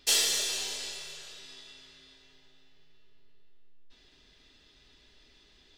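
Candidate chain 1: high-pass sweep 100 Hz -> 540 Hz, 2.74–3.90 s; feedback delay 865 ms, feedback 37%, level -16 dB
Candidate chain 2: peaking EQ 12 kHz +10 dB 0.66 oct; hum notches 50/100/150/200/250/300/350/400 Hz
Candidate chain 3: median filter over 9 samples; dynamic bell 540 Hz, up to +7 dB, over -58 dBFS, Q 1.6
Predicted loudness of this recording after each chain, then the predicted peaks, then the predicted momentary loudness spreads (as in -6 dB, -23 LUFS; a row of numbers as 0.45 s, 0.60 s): -30.5 LUFS, -27.5 LUFS, -37.0 LUFS; -11.5 dBFS, -9.0 dBFS, -20.0 dBFS; 22 LU, 24 LU, 23 LU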